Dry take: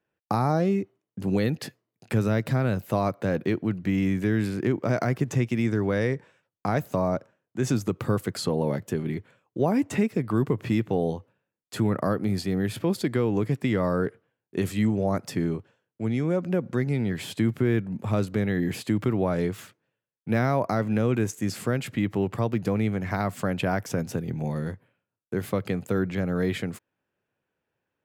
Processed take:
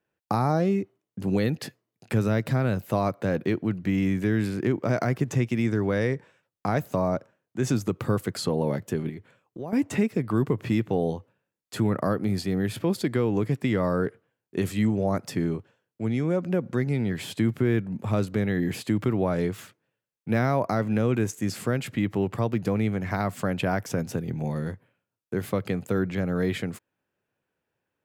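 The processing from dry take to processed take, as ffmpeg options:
-filter_complex "[0:a]asettb=1/sr,asplit=3[a][b][c];[a]atrim=end=9.094[d];[b]atrim=start=9.09:end=9.73,asetpts=PTS-STARTPTS,afade=t=in:d=0.004:c=qsin,afade=t=out:st=0.636:d=0.004:c=qsin,acompressor=threshold=-40dB:ratio=2:attack=3.2:release=140:knee=1:detection=peak[e];[c]atrim=start=9.726[f];[d][e]acrossfade=d=0.004:c1=hsin:c2=qsin[g];[g][f]acrossfade=d=0.004:c1=qsin:c2=hsin"

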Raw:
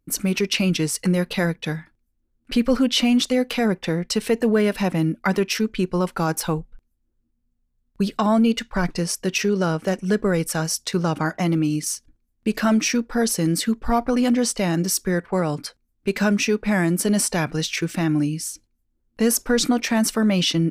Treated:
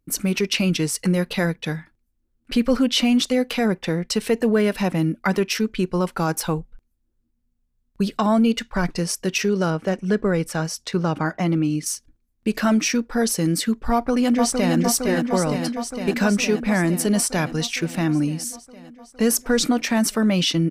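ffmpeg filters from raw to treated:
-filter_complex "[0:a]asettb=1/sr,asplit=3[a][b][c];[a]atrim=end=9.704[d];[b]atrim=start=9.7:end=11.86,asetpts=PTS-STARTPTS,afade=t=in:d=0.004:c=qsin,afade=t=out:st=2.156:d=0.004:c=qsin,highshelf=f=6.1k:g=-11[e];[c]atrim=start=11.856[f];[d][e]acrossfade=d=0.004:c1=hsin:c2=qsin[g];[g][f]acrossfade=d=0.004:c1=qsin:c2=hsin,asplit=2[h][i];[i]afade=t=in:st=13.92:d=0.01,afade=t=out:st=14.76:d=0.01,aecho=0:1:460|920|1380|1840|2300|2760|3220|3680|4140|4600|5060|5520:0.630957|0.473218|0.354914|0.266185|0.199639|0.149729|0.112297|0.0842226|0.063167|0.0473752|0.0355314|0.0266486[j];[h][j]amix=inputs=2:normalize=0"

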